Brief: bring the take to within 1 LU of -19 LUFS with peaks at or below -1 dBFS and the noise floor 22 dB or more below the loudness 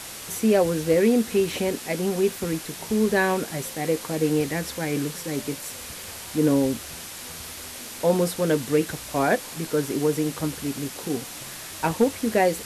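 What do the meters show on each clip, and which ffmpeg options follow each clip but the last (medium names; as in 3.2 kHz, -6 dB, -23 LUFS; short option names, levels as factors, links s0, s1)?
noise floor -38 dBFS; noise floor target -47 dBFS; loudness -25.0 LUFS; peak level -9.0 dBFS; loudness target -19.0 LUFS
-> -af "afftdn=nr=9:nf=-38"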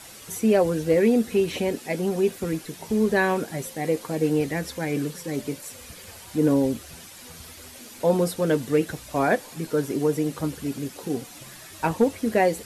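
noise floor -44 dBFS; noise floor target -47 dBFS
-> -af "afftdn=nr=6:nf=-44"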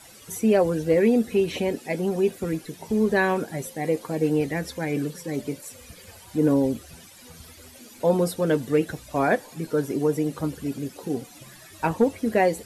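noise floor -48 dBFS; loudness -25.0 LUFS; peak level -9.0 dBFS; loudness target -19.0 LUFS
-> -af "volume=2"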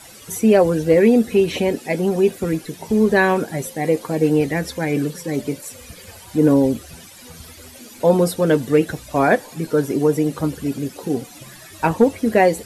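loudness -19.0 LUFS; peak level -3.0 dBFS; noise floor -42 dBFS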